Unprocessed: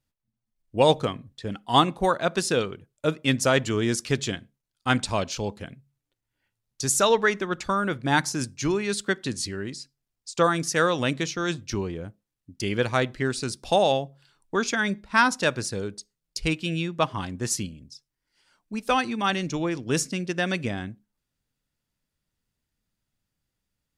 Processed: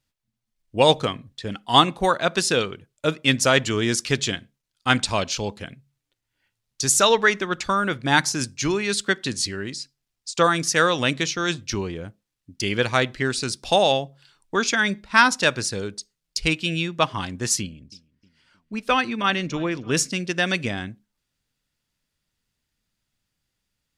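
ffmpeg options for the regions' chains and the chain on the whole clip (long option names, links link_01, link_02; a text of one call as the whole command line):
ffmpeg -i in.wav -filter_complex "[0:a]asettb=1/sr,asplit=3[link_01][link_02][link_03];[link_01]atrim=end=17.614[link_04];[link_02]atrim=start=17.61:end=19.97,asetpts=PTS-STARTPTS,afade=type=in:duration=0.004:curve=qsin,afade=type=out:start_time=2.356:duration=0.004:curve=qsin,bass=frequency=250:gain=0,treble=frequency=4000:gain=-9,bandreject=frequency=820:width=9,asplit=2[link_05][link_06];[link_06]adelay=311,lowpass=frequency=3100:poles=1,volume=-22dB,asplit=2[link_07][link_08];[link_08]adelay=311,lowpass=frequency=3100:poles=1,volume=0.49,asplit=2[link_09][link_10];[link_10]adelay=311,lowpass=frequency=3100:poles=1,volume=0.49[link_11];[link_05][link_07][link_09][link_11]amix=inputs=4:normalize=0,atrim=end_sample=104076[link_12];[link_03]atrim=start=19.966[link_13];[link_04][link_12]acrossfade=duration=0.004:curve1=hsin:curve2=qsin[link_14];[link_14][link_13]acrossfade=duration=0.004:curve1=qsin:curve2=hsin,lowpass=frequency=3600:poles=1,highshelf=frequency=2000:gain=11.5,volume=1dB" out.wav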